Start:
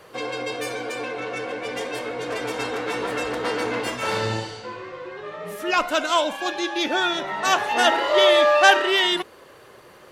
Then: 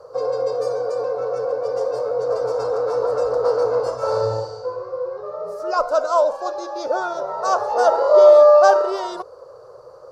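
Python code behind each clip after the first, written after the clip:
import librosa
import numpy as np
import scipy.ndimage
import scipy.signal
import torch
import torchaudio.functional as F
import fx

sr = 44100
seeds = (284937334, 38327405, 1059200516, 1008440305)

y = fx.curve_eq(x, sr, hz=(130.0, 200.0, 330.0, 500.0, 780.0, 1300.0, 1900.0, 3300.0, 4700.0, 12000.0), db=(0, -16, -11, 13, 1, 2, -23, -25, -1, -18))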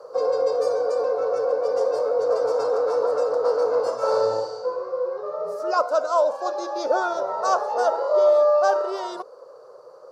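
y = scipy.signal.sosfilt(scipy.signal.butter(4, 180.0, 'highpass', fs=sr, output='sos'), x)
y = fx.rider(y, sr, range_db=4, speed_s=0.5)
y = y * librosa.db_to_amplitude(-3.5)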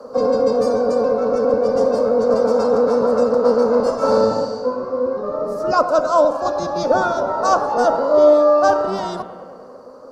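y = fx.octave_divider(x, sr, octaves=1, level_db=0.0)
y = fx.echo_bbd(y, sr, ms=100, stages=2048, feedback_pct=72, wet_db=-14.0)
y = y * librosa.db_to_amplitude(5.0)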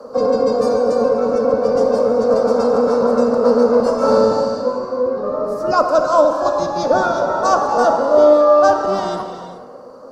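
y = fx.rev_gated(x, sr, seeds[0], gate_ms=450, shape='flat', drr_db=7.0)
y = y * librosa.db_to_amplitude(1.0)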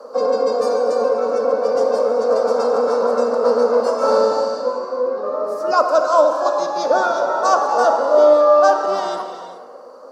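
y = scipy.signal.sosfilt(scipy.signal.butter(2, 420.0, 'highpass', fs=sr, output='sos'), x)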